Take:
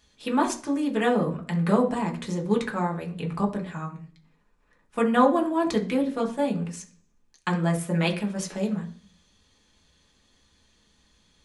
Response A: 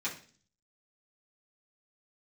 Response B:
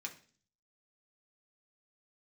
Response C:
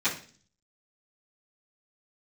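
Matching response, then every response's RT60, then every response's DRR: B; 0.40, 0.45, 0.40 seconds; −8.5, 0.5, −16.5 decibels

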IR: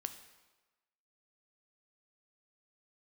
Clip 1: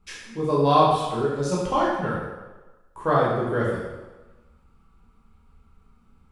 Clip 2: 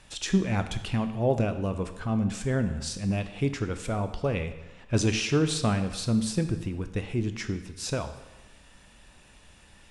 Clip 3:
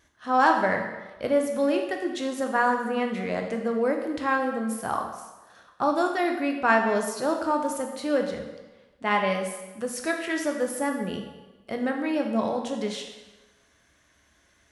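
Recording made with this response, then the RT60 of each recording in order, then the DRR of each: 2; 1.2, 1.2, 1.2 seconds; −6.5, 8.5, 2.5 decibels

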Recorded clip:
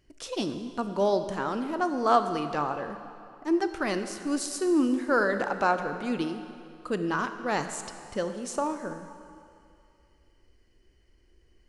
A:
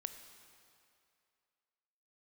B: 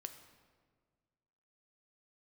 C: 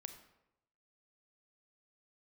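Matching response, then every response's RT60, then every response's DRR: A; 2.5, 1.7, 0.85 seconds; 8.0, 7.0, 7.5 decibels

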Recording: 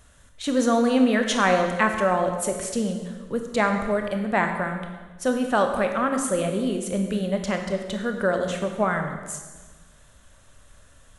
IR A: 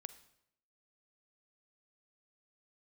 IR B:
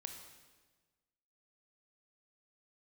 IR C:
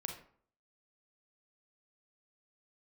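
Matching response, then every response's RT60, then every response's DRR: B; 0.75, 1.4, 0.55 seconds; 13.0, 4.5, 3.0 decibels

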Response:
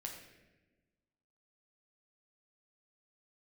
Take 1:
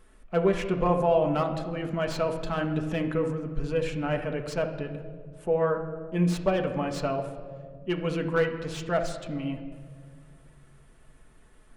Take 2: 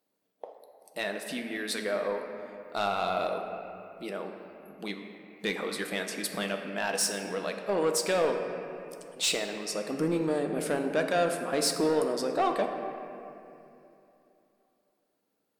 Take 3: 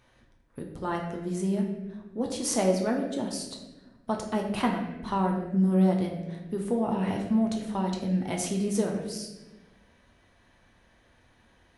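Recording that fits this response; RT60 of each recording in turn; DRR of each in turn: 3; 1.9, 2.8, 1.2 seconds; 2.5, 3.5, 0.5 decibels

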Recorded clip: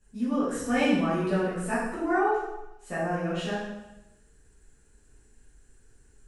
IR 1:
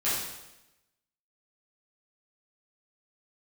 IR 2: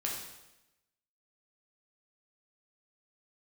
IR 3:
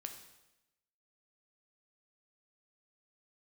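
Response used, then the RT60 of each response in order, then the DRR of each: 1; 0.95, 0.95, 0.95 seconds; −11.5, −3.0, 4.5 decibels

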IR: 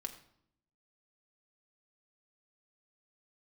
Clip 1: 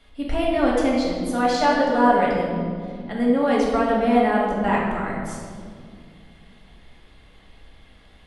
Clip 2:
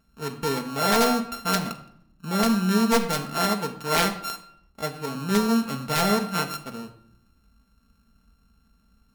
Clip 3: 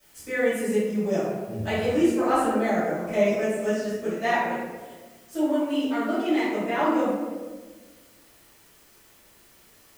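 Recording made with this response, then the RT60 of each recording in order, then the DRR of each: 2; 2.1, 0.70, 1.4 seconds; −4.5, 3.5, −16.5 decibels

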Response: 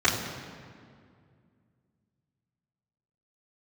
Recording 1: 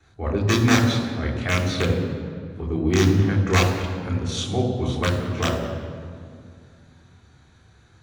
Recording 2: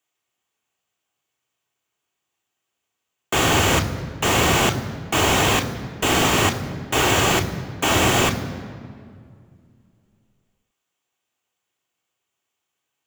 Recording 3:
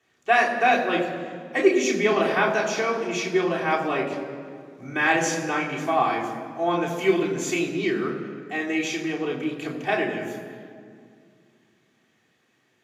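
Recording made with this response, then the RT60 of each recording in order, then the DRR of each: 1; 2.2, 2.2, 2.2 seconds; −11.5, 5.5, −4.5 decibels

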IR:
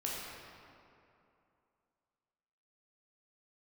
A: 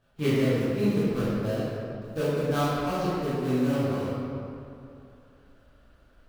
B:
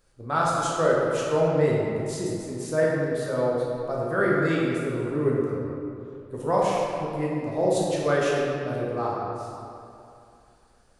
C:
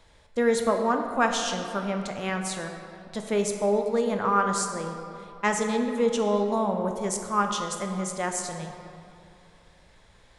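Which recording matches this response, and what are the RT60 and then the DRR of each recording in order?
B; 2.7, 2.7, 2.7 seconds; −12.0, −5.0, 4.0 decibels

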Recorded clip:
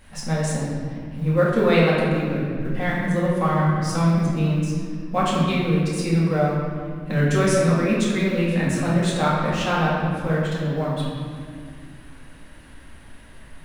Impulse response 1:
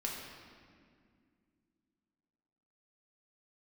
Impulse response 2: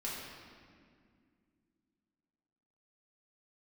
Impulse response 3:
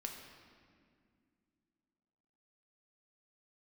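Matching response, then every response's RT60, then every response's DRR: 2; 2.1, 2.1, 2.2 seconds; −3.0, −7.0, 1.5 decibels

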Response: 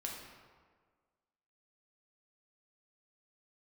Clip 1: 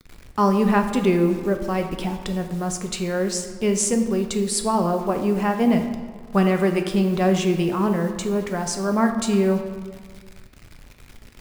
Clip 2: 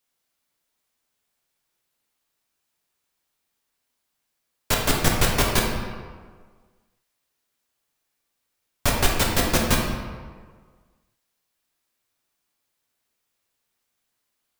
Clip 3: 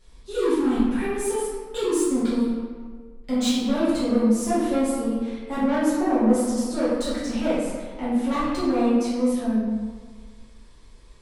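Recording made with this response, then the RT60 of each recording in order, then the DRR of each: 2; 1.6, 1.6, 1.6 seconds; 5.0, −1.5, −11.0 decibels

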